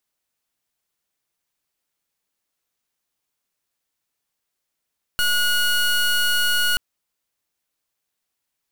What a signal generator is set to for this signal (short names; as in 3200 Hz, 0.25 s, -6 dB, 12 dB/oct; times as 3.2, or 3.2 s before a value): pulse 1450 Hz, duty 22% -19 dBFS 1.58 s